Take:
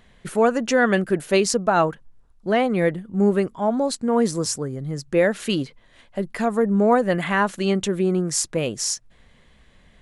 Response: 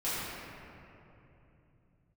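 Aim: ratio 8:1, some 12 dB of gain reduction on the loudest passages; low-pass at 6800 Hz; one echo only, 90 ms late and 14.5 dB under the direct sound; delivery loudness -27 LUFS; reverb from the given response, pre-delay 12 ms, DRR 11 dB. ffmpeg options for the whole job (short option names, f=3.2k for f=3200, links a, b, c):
-filter_complex "[0:a]lowpass=6.8k,acompressor=threshold=-26dB:ratio=8,aecho=1:1:90:0.188,asplit=2[a][b];[1:a]atrim=start_sample=2205,adelay=12[c];[b][c]afir=irnorm=-1:irlink=0,volume=-19.5dB[d];[a][d]amix=inputs=2:normalize=0,volume=3.5dB"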